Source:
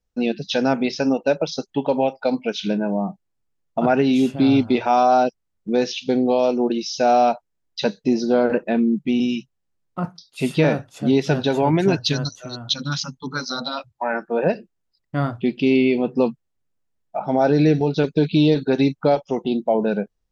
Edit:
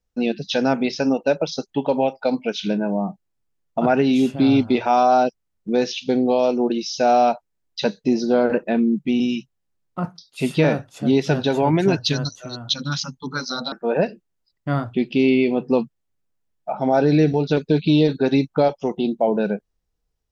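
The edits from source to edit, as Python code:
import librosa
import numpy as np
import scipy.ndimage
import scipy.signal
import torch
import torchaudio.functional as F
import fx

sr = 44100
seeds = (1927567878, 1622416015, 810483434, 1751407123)

y = fx.edit(x, sr, fx.cut(start_s=13.72, length_s=0.47), tone=tone)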